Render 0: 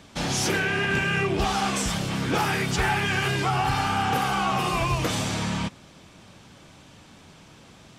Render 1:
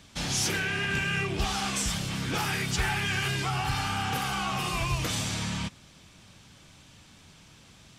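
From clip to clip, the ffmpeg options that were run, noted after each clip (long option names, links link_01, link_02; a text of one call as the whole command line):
ffmpeg -i in.wav -af "equalizer=frequency=510:width=0.34:gain=-9" out.wav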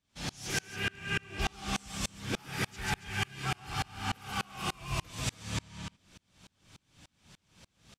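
ffmpeg -i in.wav -af "aecho=1:1:139.9|279.9:0.562|0.562,aeval=exprs='val(0)*pow(10,-33*if(lt(mod(-3.4*n/s,1),2*abs(-3.4)/1000),1-mod(-3.4*n/s,1)/(2*abs(-3.4)/1000),(mod(-3.4*n/s,1)-2*abs(-3.4)/1000)/(1-2*abs(-3.4)/1000))/20)':channel_layout=same" out.wav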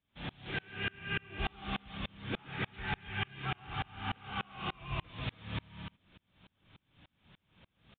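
ffmpeg -i in.wav -af "aresample=8000,aresample=44100,volume=-3dB" out.wav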